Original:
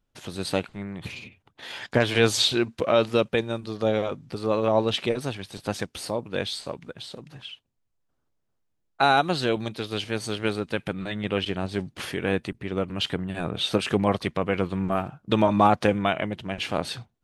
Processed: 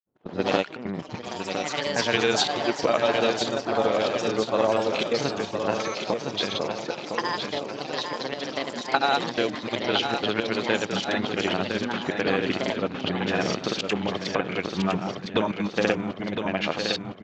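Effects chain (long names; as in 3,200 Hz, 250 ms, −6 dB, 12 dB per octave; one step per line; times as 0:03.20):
Bessel high-pass filter 220 Hz, order 2
low-pass that shuts in the quiet parts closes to 570 Hz, open at −22 dBFS
high-shelf EQ 5,300 Hz +7.5 dB
downward compressor 4 to 1, threshold −28 dBFS, peak gain reduction 12.5 dB
granular cloud, pitch spread up and down by 0 semitones
gate pattern "xx.xxxxxx." 176 BPM −24 dB
repeating echo 1,010 ms, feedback 48%, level −6.5 dB
delay with pitch and tempo change per echo 83 ms, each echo +4 semitones, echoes 3, each echo −6 dB
downsampling to 16,000 Hz
level +8.5 dB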